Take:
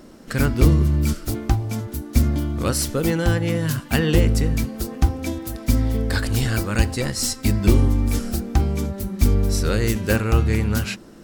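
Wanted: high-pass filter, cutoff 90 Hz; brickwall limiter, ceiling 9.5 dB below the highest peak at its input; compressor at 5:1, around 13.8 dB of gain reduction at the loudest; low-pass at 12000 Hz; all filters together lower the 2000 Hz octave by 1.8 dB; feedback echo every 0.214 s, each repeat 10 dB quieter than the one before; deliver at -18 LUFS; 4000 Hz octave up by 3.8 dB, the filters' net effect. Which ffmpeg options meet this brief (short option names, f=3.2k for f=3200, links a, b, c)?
-af "highpass=90,lowpass=12k,equalizer=f=2k:t=o:g=-4,equalizer=f=4k:t=o:g=6,acompressor=threshold=-29dB:ratio=5,alimiter=limit=-23.5dB:level=0:latency=1,aecho=1:1:214|428|642|856:0.316|0.101|0.0324|0.0104,volume=15dB"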